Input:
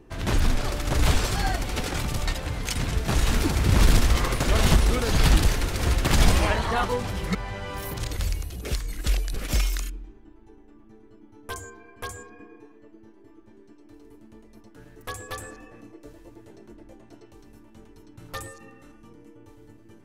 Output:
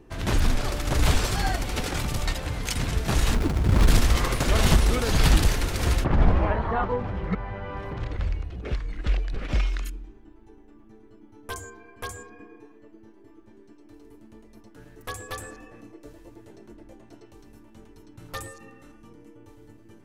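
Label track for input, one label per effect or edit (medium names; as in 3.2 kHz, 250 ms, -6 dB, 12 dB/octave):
3.340000	3.880000	hysteresis with a dead band play -22 dBFS
6.030000	9.840000	low-pass 1.2 kHz -> 3 kHz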